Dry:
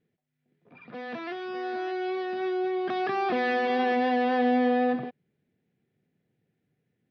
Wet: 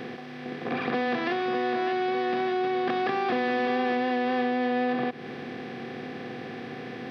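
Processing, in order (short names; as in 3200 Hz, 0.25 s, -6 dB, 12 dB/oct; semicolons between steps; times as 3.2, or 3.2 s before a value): per-bin compression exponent 0.4; compressor 5:1, threshold -32 dBFS, peak gain reduction 12.5 dB; gain +7 dB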